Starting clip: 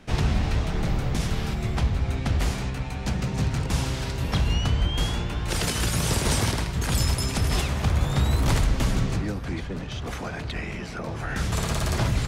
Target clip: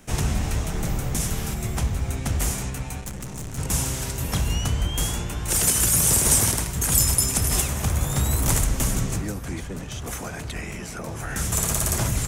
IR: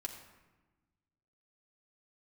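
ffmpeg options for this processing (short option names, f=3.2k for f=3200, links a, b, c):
-filter_complex "[0:a]asplit=3[a][b][c];[a]afade=t=out:st=3:d=0.02[d];[b]aeval=exprs='(tanh(35.5*val(0)+0.65)-tanh(0.65))/35.5':c=same,afade=t=in:st=3:d=0.02,afade=t=out:st=3.57:d=0.02[e];[c]afade=t=in:st=3.57:d=0.02[f];[d][e][f]amix=inputs=3:normalize=0,aexciter=amount=7.5:drive=1.8:freq=6.2k,volume=-1dB"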